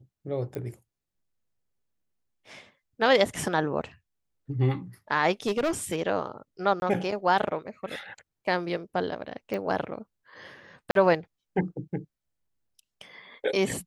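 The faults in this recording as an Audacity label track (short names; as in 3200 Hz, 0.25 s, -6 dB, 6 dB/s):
0.550000	0.550000	pop -23 dBFS
5.460000	6.020000	clipped -22 dBFS
6.800000	6.820000	gap 21 ms
9.540000	9.540000	pop -20 dBFS
10.910000	10.950000	gap 42 ms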